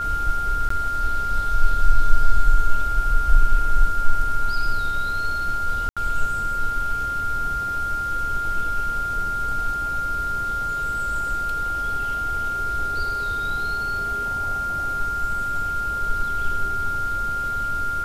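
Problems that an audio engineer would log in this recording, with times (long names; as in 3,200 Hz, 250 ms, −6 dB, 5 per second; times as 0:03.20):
whistle 1,400 Hz −23 dBFS
0:00.69–0:00.70: drop-out 14 ms
0:05.89–0:05.97: drop-out 76 ms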